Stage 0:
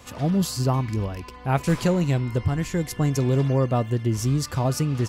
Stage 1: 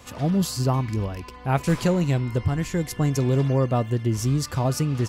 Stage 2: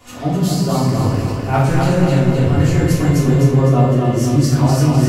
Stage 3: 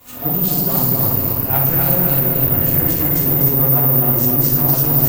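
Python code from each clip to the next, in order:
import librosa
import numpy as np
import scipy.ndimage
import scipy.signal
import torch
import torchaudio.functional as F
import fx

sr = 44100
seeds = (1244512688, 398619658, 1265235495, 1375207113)

y1 = x
y2 = fx.rider(y1, sr, range_db=3, speed_s=0.5)
y2 = fx.echo_feedback(y2, sr, ms=254, feedback_pct=51, wet_db=-4)
y2 = fx.room_shoebox(y2, sr, seeds[0], volume_m3=220.0, walls='mixed', distance_m=3.3)
y2 = y2 * 10.0 ** (-4.5 / 20.0)
y3 = fx.tube_stage(y2, sr, drive_db=15.0, bias=0.55)
y3 = y3 + 10.0 ** (-6.5 / 20.0) * np.pad(y3, (int(307 * sr / 1000.0), 0))[:len(y3)]
y3 = (np.kron(y3[::3], np.eye(3)[0]) * 3)[:len(y3)]
y3 = y3 * 10.0 ** (-1.5 / 20.0)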